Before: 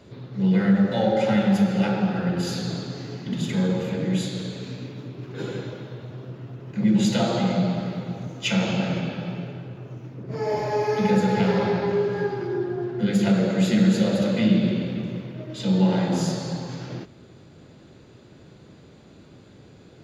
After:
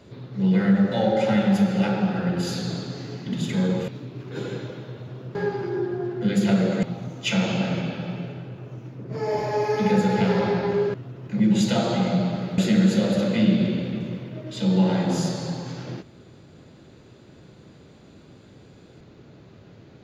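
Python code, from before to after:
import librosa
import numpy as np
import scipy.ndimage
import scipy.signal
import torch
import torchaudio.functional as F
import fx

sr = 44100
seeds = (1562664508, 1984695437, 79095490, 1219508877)

y = fx.edit(x, sr, fx.cut(start_s=3.88, length_s=1.03),
    fx.swap(start_s=6.38, length_s=1.64, other_s=12.13, other_length_s=1.48), tone=tone)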